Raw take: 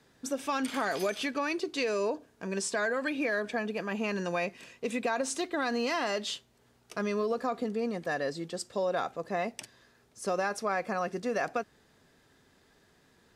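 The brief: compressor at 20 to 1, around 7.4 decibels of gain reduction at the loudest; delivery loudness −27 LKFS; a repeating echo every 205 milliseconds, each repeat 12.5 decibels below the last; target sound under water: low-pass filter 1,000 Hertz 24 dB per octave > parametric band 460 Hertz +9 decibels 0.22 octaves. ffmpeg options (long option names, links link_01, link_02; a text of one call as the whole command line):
ffmpeg -i in.wav -af "acompressor=threshold=-33dB:ratio=20,lowpass=frequency=1000:width=0.5412,lowpass=frequency=1000:width=1.3066,equalizer=frequency=460:width_type=o:width=0.22:gain=9,aecho=1:1:205|410|615:0.237|0.0569|0.0137,volume=10dB" out.wav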